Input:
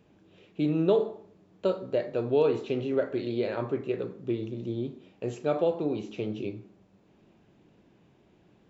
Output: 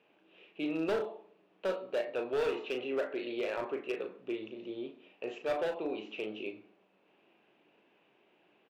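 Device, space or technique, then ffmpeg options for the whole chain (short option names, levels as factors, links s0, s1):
megaphone: -filter_complex "[0:a]highpass=450,lowpass=3100,equalizer=f=2700:t=o:w=0.5:g=9,asoftclip=type=hard:threshold=0.0501,asplit=2[s0][s1];[s1]adelay=37,volume=0.398[s2];[s0][s2]amix=inputs=2:normalize=0,volume=0.794"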